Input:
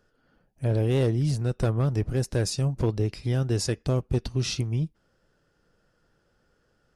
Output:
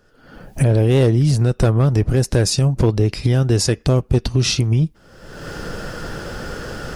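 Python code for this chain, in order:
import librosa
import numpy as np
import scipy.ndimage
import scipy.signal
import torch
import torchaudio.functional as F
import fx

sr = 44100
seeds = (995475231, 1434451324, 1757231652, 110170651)

y = fx.recorder_agc(x, sr, target_db=-18.5, rise_db_per_s=43.0, max_gain_db=30)
y = y * librosa.db_to_amplitude(9.0)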